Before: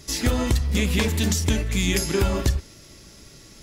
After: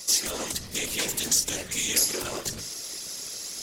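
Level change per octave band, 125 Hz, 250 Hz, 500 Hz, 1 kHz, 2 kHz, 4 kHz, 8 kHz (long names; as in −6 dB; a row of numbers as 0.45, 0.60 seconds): −20.5, −14.0, −9.0, −6.0, −5.0, +1.0, +5.5 decibels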